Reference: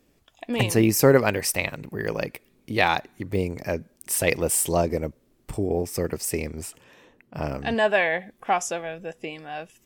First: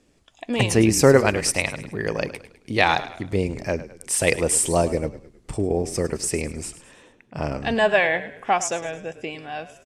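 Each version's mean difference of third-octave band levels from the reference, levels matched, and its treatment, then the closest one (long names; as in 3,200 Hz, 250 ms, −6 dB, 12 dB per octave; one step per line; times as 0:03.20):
3.5 dB: low-pass filter 9,300 Hz 24 dB per octave
high-shelf EQ 6,600 Hz +5 dB
on a send: echo with shifted repeats 105 ms, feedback 44%, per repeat −35 Hz, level −14.5 dB
on the sum: level +2 dB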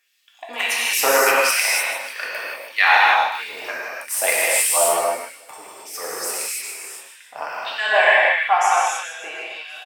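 14.5 dB: on a send: repeating echo 152 ms, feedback 44%, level −10 dB
on the sum: auto-filter high-pass sine 1.6 Hz 780–3,700 Hz
reverb whose tail is shaped and stops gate 340 ms flat, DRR −6.5 dB
level −1 dB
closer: first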